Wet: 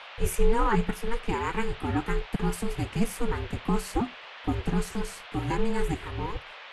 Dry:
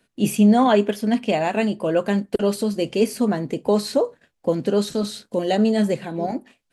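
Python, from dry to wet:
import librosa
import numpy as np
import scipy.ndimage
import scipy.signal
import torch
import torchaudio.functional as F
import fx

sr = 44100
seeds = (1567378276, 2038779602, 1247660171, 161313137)

y = x * np.sin(2.0 * np.pi * 230.0 * np.arange(len(x)) / sr)
y = fx.fixed_phaser(y, sr, hz=1500.0, stages=4)
y = fx.dmg_noise_band(y, sr, seeds[0], low_hz=500.0, high_hz=3300.0, level_db=-45.0)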